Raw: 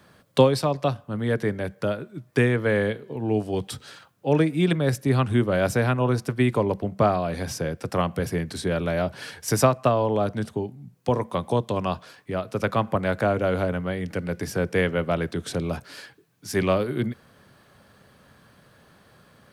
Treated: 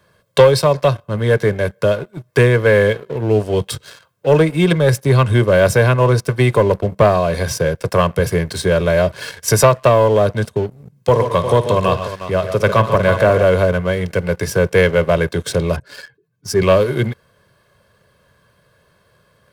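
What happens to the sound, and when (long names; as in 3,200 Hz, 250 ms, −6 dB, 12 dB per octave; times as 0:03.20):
0:10.75–0:13.43: multi-tap delay 53/121/141/356 ms −14.5/−15.5/−10.5/−12 dB
0:15.76–0:16.62: expanding power law on the bin magnitudes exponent 1.6
whole clip: comb filter 1.9 ms, depth 61%; leveller curve on the samples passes 2; level +1 dB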